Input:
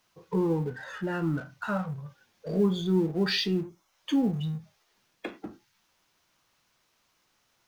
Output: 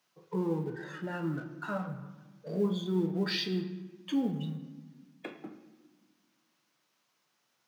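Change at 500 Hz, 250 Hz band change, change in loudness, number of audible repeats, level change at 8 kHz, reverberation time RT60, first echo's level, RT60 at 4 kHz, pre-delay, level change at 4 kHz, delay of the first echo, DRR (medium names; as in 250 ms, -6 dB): -5.0 dB, -4.5 dB, -5.0 dB, no echo, no reading, 1.4 s, no echo, 0.85 s, 5 ms, -5.0 dB, no echo, 7.5 dB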